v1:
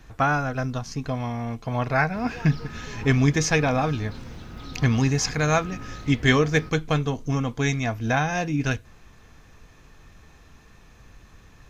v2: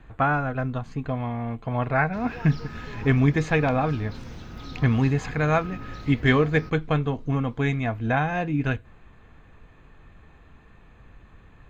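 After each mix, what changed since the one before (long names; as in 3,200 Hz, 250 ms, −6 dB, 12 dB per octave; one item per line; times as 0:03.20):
speech: add moving average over 8 samples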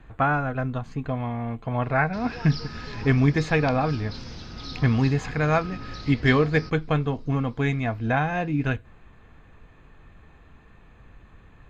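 background: add low-pass with resonance 5,000 Hz, resonance Q 4.8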